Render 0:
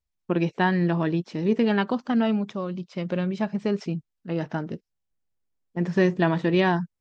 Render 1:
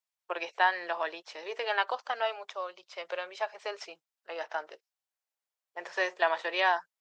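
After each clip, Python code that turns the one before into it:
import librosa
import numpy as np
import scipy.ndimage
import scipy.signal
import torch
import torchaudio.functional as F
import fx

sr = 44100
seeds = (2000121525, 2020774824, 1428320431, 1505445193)

y = scipy.signal.sosfilt(scipy.signal.cheby2(4, 50, 230.0, 'highpass', fs=sr, output='sos'), x)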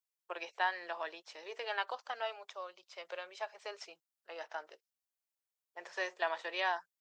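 y = fx.high_shelf(x, sr, hz=6200.0, db=8.5)
y = y * librosa.db_to_amplitude(-8.0)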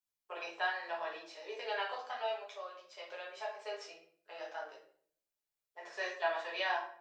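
y = fx.room_shoebox(x, sr, seeds[0], volume_m3=72.0, walls='mixed', distance_m=1.4)
y = y * librosa.db_to_amplitude(-6.5)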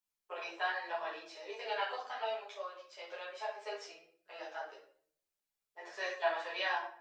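y = fx.ensemble(x, sr)
y = y * librosa.db_to_amplitude(3.5)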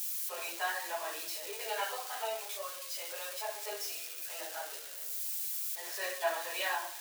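y = x + 0.5 * 10.0 ** (-31.5 / 20.0) * np.diff(np.sign(x), prepend=np.sign(x[:1]))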